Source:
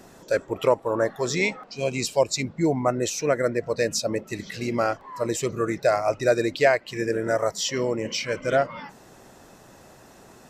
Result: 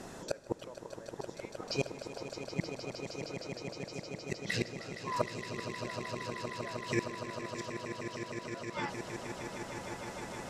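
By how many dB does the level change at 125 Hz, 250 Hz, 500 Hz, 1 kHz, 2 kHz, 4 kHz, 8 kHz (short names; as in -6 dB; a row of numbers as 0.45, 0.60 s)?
-9.0, -12.0, -17.0, -12.5, -12.0, -11.0, -15.5 dB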